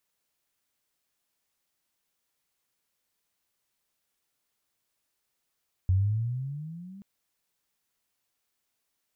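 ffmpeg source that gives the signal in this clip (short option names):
-f lavfi -i "aevalsrc='pow(10,(-19-24*t/1.13)/20)*sin(2*PI*90.3*1.13/(14*log(2)/12)*(exp(14*log(2)/12*t/1.13)-1))':d=1.13:s=44100"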